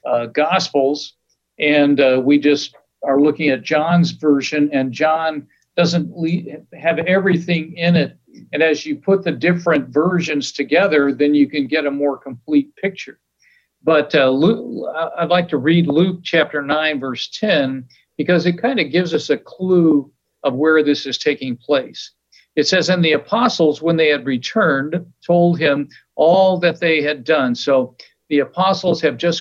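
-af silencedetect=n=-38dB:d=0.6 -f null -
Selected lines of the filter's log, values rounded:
silence_start: 13.13
silence_end: 13.85 | silence_duration: 0.72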